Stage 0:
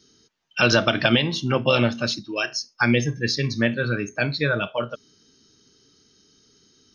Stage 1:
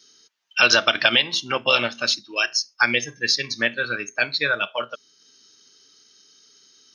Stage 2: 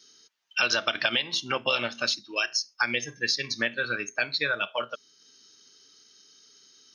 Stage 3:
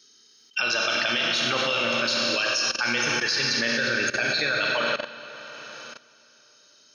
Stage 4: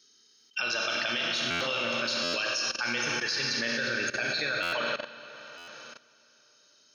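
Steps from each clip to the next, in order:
high-pass 1.4 kHz 6 dB/octave; transient shaper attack 0 dB, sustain -4 dB; trim +6 dB
compression 2.5:1, threshold -22 dBFS, peak gain reduction 8 dB; trim -2 dB
Schroeder reverb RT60 3.5 s, combs from 30 ms, DRR 1 dB; level held to a coarse grid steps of 16 dB; trim +7.5 dB
buffer glitch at 1.50/2.23/4.62/5.57 s, samples 512, times 8; trim -5.5 dB

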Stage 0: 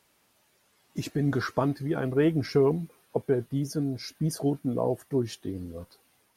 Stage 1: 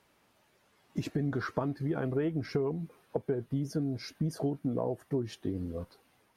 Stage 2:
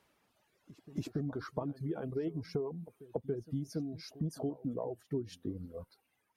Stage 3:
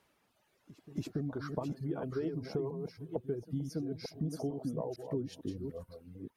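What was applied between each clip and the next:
compression 6:1, threshold -30 dBFS, peak gain reduction 12 dB; treble shelf 4 kHz -11 dB; trim +2 dB
reverb removal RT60 1.8 s; dynamic bell 1.8 kHz, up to -8 dB, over -56 dBFS, Q 1.1; pre-echo 282 ms -18 dB; trim -3.5 dB
chunks repeated in reverse 451 ms, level -6.5 dB

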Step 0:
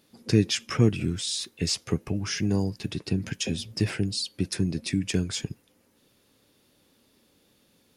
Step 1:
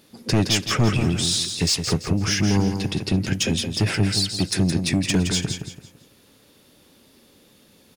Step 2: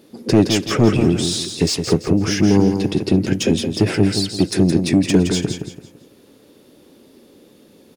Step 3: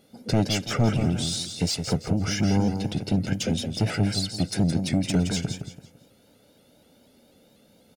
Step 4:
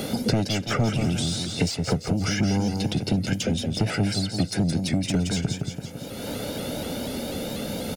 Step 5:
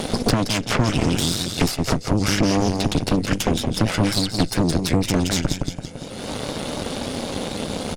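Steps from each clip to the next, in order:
saturation -22 dBFS, distortion -8 dB; on a send: feedback delay 168 ms, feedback 32%, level -7 dB; on the sum: trim +8.5 dB
peaking EQ 360 Hz +12 dB 1.9 oct; trim -1 dB
comb 1.4 ms, depth 67%; vibrato with a chosen wave saw up 4.1 Hz, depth 100 cents; trim -8 dB
three bands compressed up and down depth 100%
resampled via 22.05 kHz; Chebyshev shaper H 6 -9 dB, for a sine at -9.5 dBFS; trim +1.5 dB

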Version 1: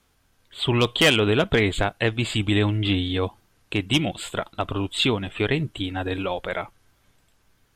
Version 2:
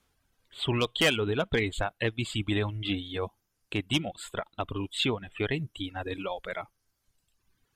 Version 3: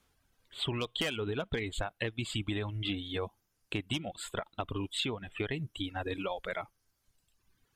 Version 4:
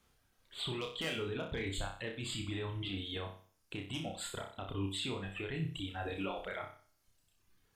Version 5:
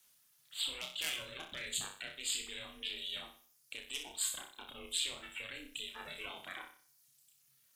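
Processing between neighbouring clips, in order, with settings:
reverb removal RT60 1.2 s; trim -6 dB
compression 10:1, threshold -30 dBFS, peak gain reduction 11 dB
peak limiter -29.5 dBFS, peak gain reduction 11 dB; on a send: flutter echo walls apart 5.3 m, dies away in 0.44 s; on the sum: trim -1.5 dB
ring modulator 220 Hz; pre-emphasis filter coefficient 0.97; frequency shift -83 Hz; trim +12.5 dB

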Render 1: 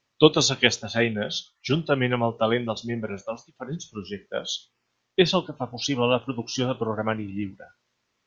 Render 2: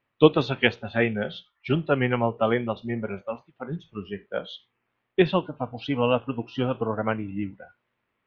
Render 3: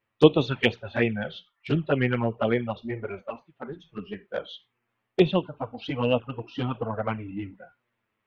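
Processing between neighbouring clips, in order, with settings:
low-pass 2.7 kHz 24 dB/octave
touch-sensitive flanger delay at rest 9.4 ms, full sweep at -17 dBFS; trim +1 dB

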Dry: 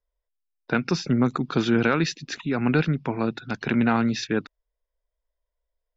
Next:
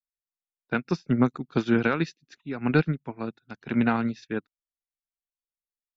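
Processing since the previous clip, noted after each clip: upward expansion 2.5:1, over -38 dBFS; trim +1.5 dB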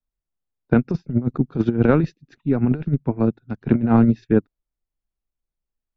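tilt EQ -4.5 dB/octave; compressor with a negative ratio -17 dBFS, ratio -0.5; dynamic bell 510 Hz, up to +4 dB, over -31 dBFS, Q 0.83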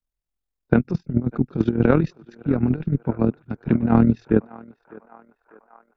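band-passed feedback delay 600 ms, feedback 73%, band-pass 1.1 kHz, level -17 dB; AM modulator 41 Hz, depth 50%; trim +2 dB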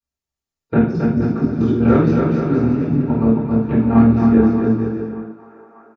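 bouncing-ball echo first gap 270 ms, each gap 0.75×, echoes 5; reverberation RT60 0.55 s, pre-delay 3 ms, DRR -10.5 dB; trim -11.5 dB

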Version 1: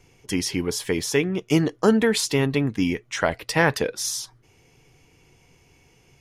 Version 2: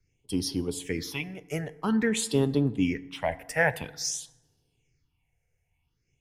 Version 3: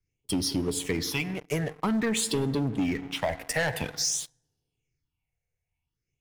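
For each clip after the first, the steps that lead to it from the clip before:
phase shifter stages 6, 0.5 Hz, lowest notch 270–2200 Hz; FDN reverb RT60 1.5 s, low-frequency decay 1.25×, high-frequency decay 0.5×, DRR 15 dB; three bands expanded up and down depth 40%; trim -4.5 dB
waveshaping leveller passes 3; compression, threshold -21 dBFS, peak gain reduction 7 dB; trim -3.5 dB

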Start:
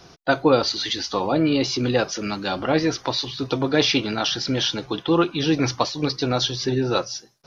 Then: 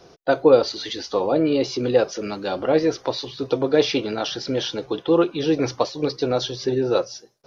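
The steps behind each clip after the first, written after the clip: peaking EQ 480 Hz +11 dB 1.1 oct; trim -5.5 dB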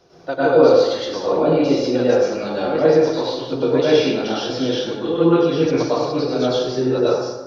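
plate-style reverb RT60 1.2 s, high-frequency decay 0.5×, pre-delay 90 ms, DRR -9 dB; trim -6.5 dB

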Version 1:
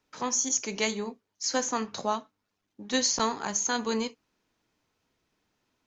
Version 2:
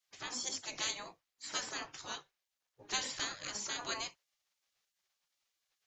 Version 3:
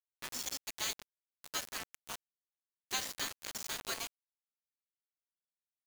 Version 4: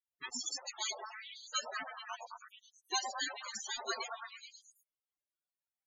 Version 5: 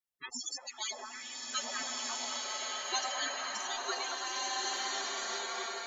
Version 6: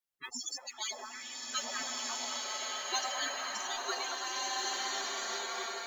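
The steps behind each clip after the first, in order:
spectral gate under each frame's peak -15 dB weak
bit crusher 6-bit; trim -1 dB
repeats whose band climbs or falls 108 ms, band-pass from 650 Hz, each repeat 0.7 oct, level -2.5 dB; loudest bins only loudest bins 16; trim +7.5 dB
swelling reverb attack 1710 ms, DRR -4.5 dB
modulation noise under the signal 29 dB

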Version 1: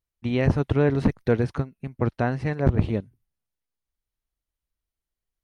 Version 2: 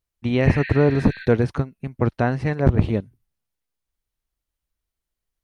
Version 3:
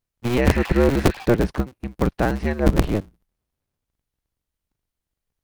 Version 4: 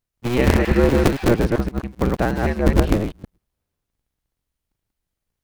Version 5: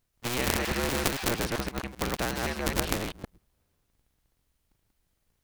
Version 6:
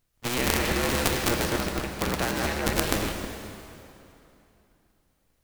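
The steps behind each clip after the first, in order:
spectral replace 0.49–1.23 s, 1.5–4.6 kHz both; trim +3.5 dB
cycle switcher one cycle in 2, inverted
chunks repeated in reverse 130 ms, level -2.5 dB
spectrum-flattening compressor 2:1
plate-style reverb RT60 2.9 s, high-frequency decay 0.85×, DRR 4 dB; trim +2 dB

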